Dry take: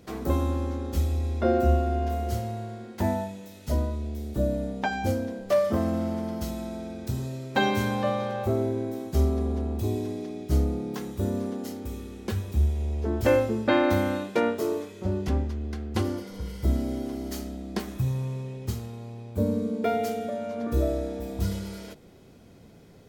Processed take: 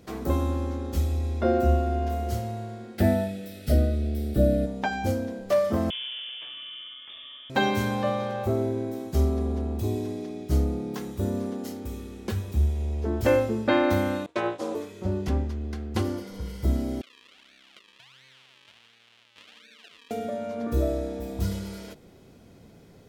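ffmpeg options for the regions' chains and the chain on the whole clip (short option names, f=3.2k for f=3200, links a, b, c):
-filter_complex "[0:a]asettb=1/sr,asplit=3[a][b][c];[a]atrim=end=2.984[d];[b]atrim=start=2.98:end=4.66,asetpts=PTS-STARTPTS,afade=t=in:d=0.004:c=qsin,afade=t=out:st=1.676:d=0.004:c=qsin,equalizer=f=6.6k:w=4.5:g=-12,acontrast=28,asuperstop=centerf=990:order=4:qfactor=2[e];[c]atrim=start=4.656[f];[d][e]acrossfade=d=0.004:c1=hsin:c2=qsin[g];[g][f]acrossfade=d=0.004:c1=qsin:c2=hsin,asettb=1/sr,asplit=3[h][i][j];[h]atrim=end=5.904[k];[i]atrim=start=5.9:end=7.5,asetpts=PTS-STARTPTS,afade=t=in:d=0.004:c=qsin,afade=t=out:st=1.596:d=0.004:c=qsin,highpass=450,lowpass=f=3.1k:t=q:w=0.5098,lowpass=f=3.1k:t=q:w=0.6013,lowpass=f=3.1k:t=q:w=0.9,lowpass=f=3.1k:t=q:w=2.563,afreqshift=-3700[l];[j]atrim=start=7.496[m];[k][l]acrossfade=d=0.004:c1=hsin:c2=qsin[n];[n][m]acrossfade=d=0.004:c1=qsin:c2=hsin,asettb=1/sr,asplit=3[o][p][q];[o]atrim=end=14.264[r];[p]atrim=start=14.26:end=14.75,asetpts=PTS-STARTPTS,afade=t=in:d=0.004:c=qsin,afade=t=out:st=0.486:d=0.004:c=qsin,agate=range=-33dB:threshold=-30dB:ratio=3:release=100:detection=peak,aeval=exprs='val(0)*sin(2*PI*120*n/s)':c=same,highpass=170,equalizer=f=190:t=q:w=4:g=-9,equalizer=f=1k:t=q:w=4:g=6,equalizer=f=3.5k:t=q:w=4:g=5,lowpass=f=9.9k:w=0.5412,lowpass=f=9.9k:w=1.3066[s];[q]atrim=start=14.746[t];[r][s]acrossfade=d=0.004:c1=hsin:c2=qsin[u];[u][t]acrossfade=d=0.004:c1=qsin:c2=hsin,asettb=1/sr,asplit=3[v][w][x];[v]atrim=end=17.014[y];[w]atrim=start=17.01:end=20.11,asetpts=PTS-STARTPTS,afade=t=in:d=0.004:c=qsin,afade=t=out:st=3.096:d=0.004:c=qsin,acrusher=samples=42:mix=1:aa=0.000001:lfo=1:lforange=42:lforate=1.4,bandpass=f=3.1k:t=q:w=2.6,acompressor=threshold=-49dB:ratio=3:attack=3.2:release=140:knee=1:detection=peak[z];[x]atrim=start=20.106[aa];[y][z]acrossfade=d=0.004:c1=hsin:c2=qsin[ab];[ab][aa]acrossfade=d=0.004:c1=qsin:c2=hsin"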